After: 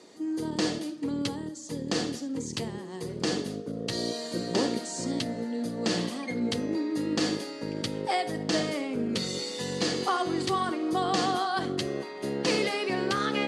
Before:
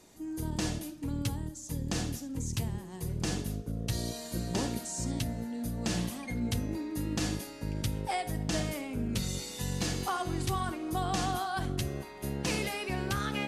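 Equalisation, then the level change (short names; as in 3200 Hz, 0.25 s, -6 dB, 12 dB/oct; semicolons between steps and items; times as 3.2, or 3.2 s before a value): speaker cabinet 200–9400 Hz, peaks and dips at 480 Hz +5 dB, 1200 Hz +5 dB, 1900 Hz +6 dB, 3200 Hz +5 dB, 4500 Hz +9 dB; bell 350 Hz +7.5 dB 2.3 oct; 0.0 dB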